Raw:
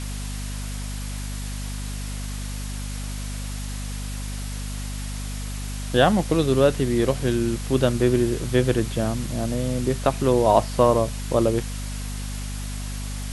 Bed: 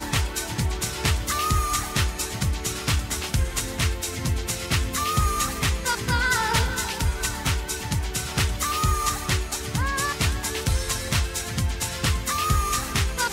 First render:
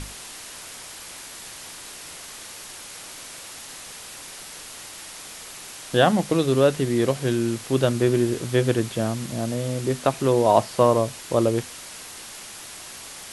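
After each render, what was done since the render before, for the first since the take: notches 50/100/150/200/250 Hz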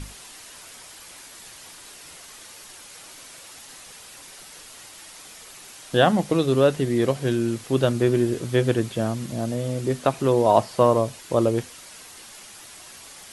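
denoiser 6 dB, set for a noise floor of -40 dBFS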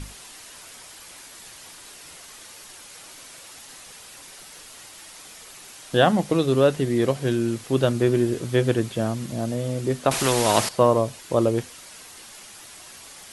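4.38–5.1 overloaded stage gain 35 dB; 10.11–10.69 spectral compressor 2:1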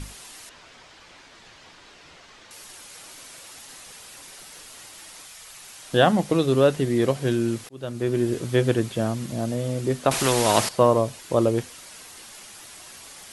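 0.49–2.51 air absorption 150 m; 5.24–5.85 bell 310 Hz -15 dB -> -3.5 dB 1.5 oct; 7.69–8.34 fade in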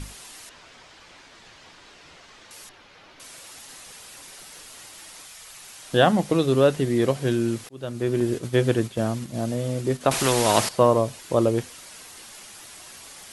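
2.69–3.2 air absorption 250 m; 8.2–10.01 gate -31 dBFS, range -6 dB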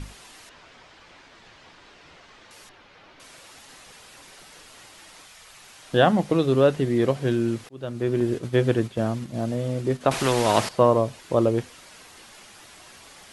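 high shelf 5900 Hz -11 dB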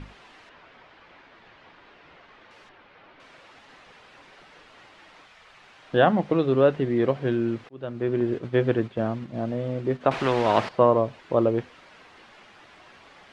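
LPF 2700 Hz 12 dB/oct; low shelf 140 Hz -6.5 dB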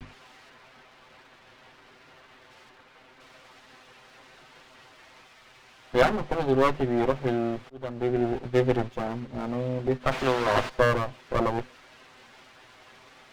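minimum comb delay 7.8 ms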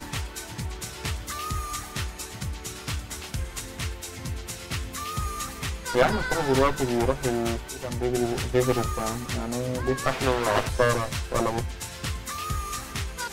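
add bed -8 dB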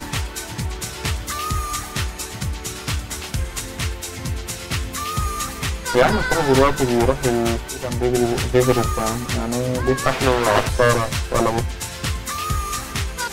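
gain +7 dB; limiter -3 dBFS, peak gain reduction 2.5 dB

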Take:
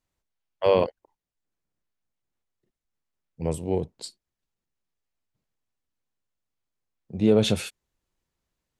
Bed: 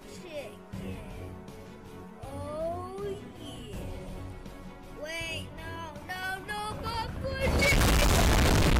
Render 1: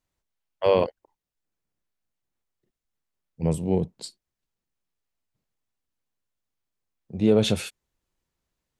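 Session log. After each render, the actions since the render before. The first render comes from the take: 3.43–4.06 bell 180 Hz +8 dB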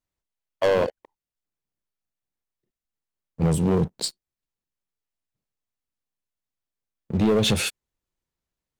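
compressor, threshold -23 dBFS, peak gain reduction 9 dB; sample leveller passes 3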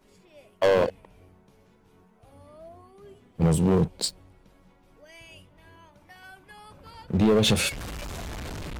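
add bed -13 dB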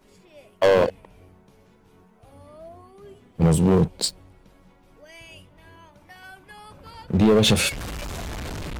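gain +3.5 dB

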